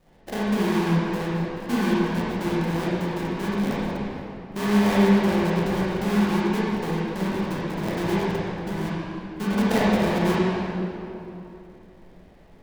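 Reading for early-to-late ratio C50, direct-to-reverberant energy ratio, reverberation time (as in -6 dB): -5.0 dB, -8.5 dB, 2.9 s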